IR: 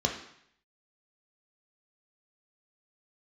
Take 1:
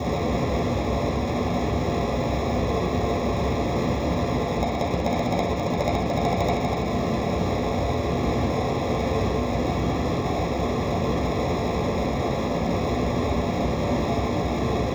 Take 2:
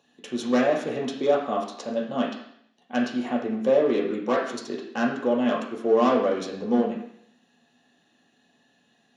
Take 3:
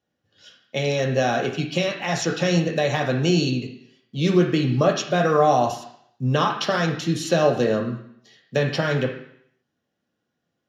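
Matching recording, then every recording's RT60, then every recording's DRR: 3; 0.70, 0.70, 0.70 s; -8.0, -3.0, 1.5 dB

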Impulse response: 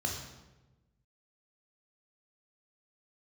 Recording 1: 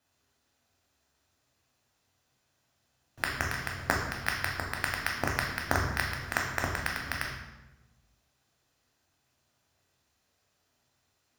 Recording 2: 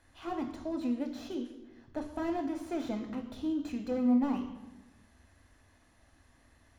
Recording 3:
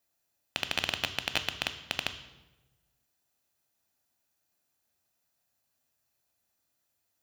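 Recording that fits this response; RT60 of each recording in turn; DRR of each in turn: 1; 1.1, 1.1, 1.1 s; -0.5, 5.0, 9.5 dB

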